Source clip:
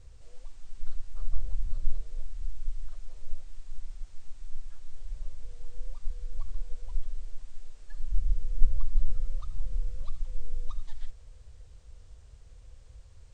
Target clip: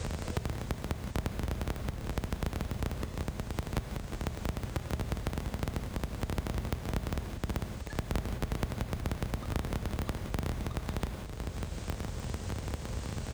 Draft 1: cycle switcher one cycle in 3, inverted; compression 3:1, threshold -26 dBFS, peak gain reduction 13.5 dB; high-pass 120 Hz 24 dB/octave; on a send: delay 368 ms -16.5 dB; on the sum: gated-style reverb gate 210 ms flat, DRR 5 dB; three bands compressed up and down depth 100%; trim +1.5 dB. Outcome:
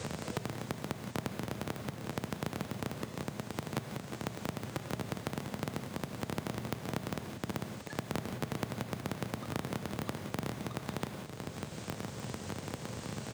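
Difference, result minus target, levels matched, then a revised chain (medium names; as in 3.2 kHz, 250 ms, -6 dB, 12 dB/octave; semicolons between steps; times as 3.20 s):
125 Hz band -2.5 dB
cycle switcher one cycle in 3, inverted; compression 3:1, threshold -26 dBFS, peak gain reduction 13.5 dB; high-pass 49 Hz 24 dB/octave; on a send: delay 368 ms -16.5 dB; on the sum: gated-style reverb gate 210 ms flat, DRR 5 dB; three bands compressed up and down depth 100%; trim +1.5 dB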